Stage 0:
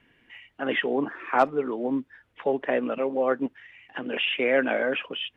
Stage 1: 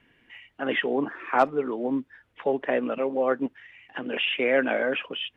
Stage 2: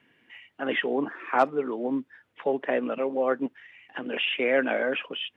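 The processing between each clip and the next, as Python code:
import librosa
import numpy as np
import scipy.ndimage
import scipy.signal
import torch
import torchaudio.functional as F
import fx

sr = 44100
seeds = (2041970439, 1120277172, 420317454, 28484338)

y1 = x
y2 = scipy.signal.sosfilt(scipy.signal.butter(2, 130.0, 'highpass', fs=sr, output='sos'), y1)
y2 = y2 * 10.0 ** (-1.0 / 20.0)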